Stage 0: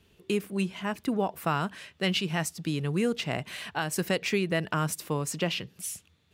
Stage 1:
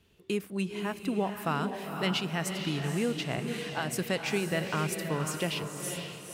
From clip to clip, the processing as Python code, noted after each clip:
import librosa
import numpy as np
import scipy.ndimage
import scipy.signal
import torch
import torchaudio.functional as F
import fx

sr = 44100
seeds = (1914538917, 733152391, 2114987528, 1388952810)

y = fx.echo_diffused(x, sr, ms=499, feedback_pct=41, wet_db=-5.5)
y = y * 10.0 ** (-3.0 / 20.0)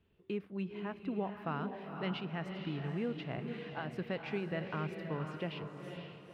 y = fx.air_absorb(x, sr, metres=370.0)
y = y * 10.0 ** (-6.0 / 20.0)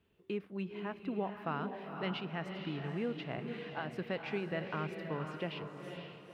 y = fx.low_shelf(x, sr, hz=150.0, db=-7.0)
y = y * 10.0 ** (1.5 / 20.0)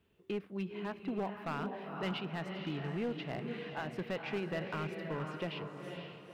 y = np.clip(x, -10.0 ** (-31.5 / 20.0), 10.0 ** (-31.5 / 20.0))
y = y * 10.0 ** (1.0 / 20.0)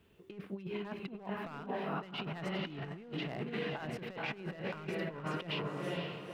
y = fx.over_compress(x, sr, threshold_db=-42.0, ratio=-0.5)
y = y * 10.0 ** (3.0 / 20.0)